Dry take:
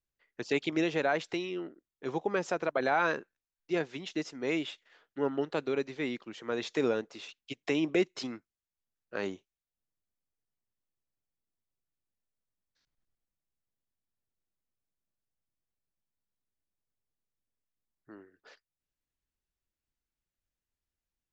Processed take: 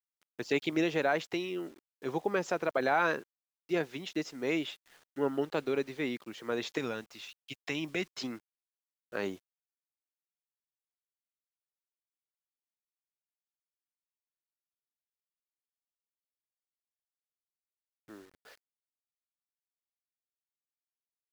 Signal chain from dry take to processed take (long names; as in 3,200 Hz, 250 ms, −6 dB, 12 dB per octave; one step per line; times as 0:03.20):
bit reduction 10 bits
0:06.78–0:08.19: parametric band 420 Hz −10 dB 1.7 octaves